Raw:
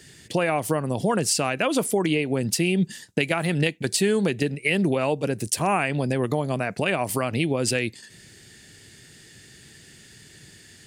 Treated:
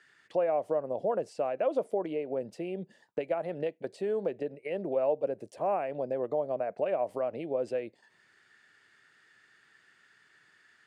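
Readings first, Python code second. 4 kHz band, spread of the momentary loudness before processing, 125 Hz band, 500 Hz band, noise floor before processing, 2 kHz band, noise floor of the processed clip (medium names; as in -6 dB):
under -25 dB, 4 LU, -21.5 dB, -3.5 dB, -50 dBFS, -20.5 dB, -66 dBFS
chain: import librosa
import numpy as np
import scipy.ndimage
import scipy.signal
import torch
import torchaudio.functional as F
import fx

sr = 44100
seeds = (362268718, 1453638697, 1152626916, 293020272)

y = fx.auto_wah(x, sr, base_hz=580.0, top_hz=1400.0, q=3.3, full_db=-24.0, direction='down')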